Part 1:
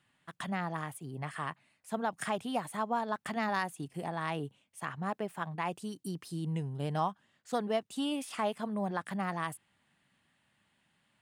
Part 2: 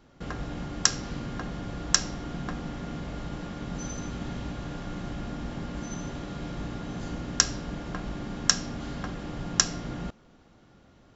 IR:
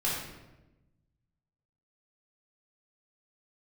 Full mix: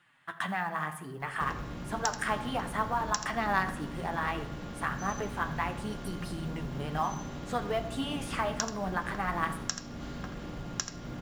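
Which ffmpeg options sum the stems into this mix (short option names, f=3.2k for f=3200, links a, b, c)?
-filter_complex "[0:a]acompressor=threshold=-37dB:ratio=2,flanger=delay=5.5:depth=8.7:regen=35:speed=0.64:shape=triangular,equalizer=f=1.5k:w=0.64:g=10,volume=2.5dB,asplit=3[a][b][c];[b]volume=-15.5dB[d];[c]volume=-20dB[e];[1:a]acompressor=threshold=-40dB:ratio=2,adelay=1200,volume=0dB,asplit=2[f][g];[g]volume=-9.5dB[h];[2:a]atrim=start_sample=2205[i];[d][i]afir=irnorm=-1:irlink=0[j];[e][h]amix=inputs=2:normalize=0,aecho=0:1:83:1[k];[a][f][j][k]amix=inputs=4:normalize=0,acrusher=bits=8:mode=log:mix=0:aa=0.000001"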